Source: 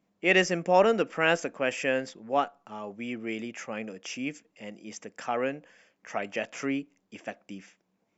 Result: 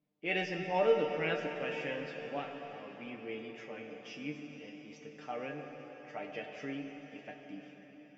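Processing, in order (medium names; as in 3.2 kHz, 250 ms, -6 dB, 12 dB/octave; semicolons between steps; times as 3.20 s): low-pass 4.4 kHz 24 dB/octave; peaking EQ 1.2 kHz -6 dB 1.4 oct; feedback comb 150 Hz, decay 0.17 s, harmonics all, mix 90%; on a send: reverberation RT60 5.1 s, pre-delay 6 ms, DRR 3 dB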